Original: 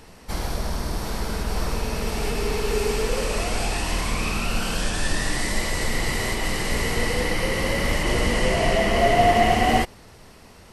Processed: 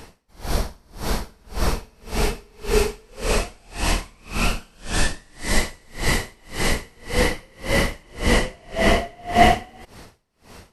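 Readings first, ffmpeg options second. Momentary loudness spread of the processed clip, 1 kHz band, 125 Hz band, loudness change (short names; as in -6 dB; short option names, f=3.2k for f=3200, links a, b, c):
13 LU, -1.5 dB, -0.5 dB, -0.5 dB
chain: -af "aeval=exprs='val(0)*pow(10,-35*(0.5-0.5*cos(2*PI*1.8*n/s))/20)':c=same,volume=6.5dB"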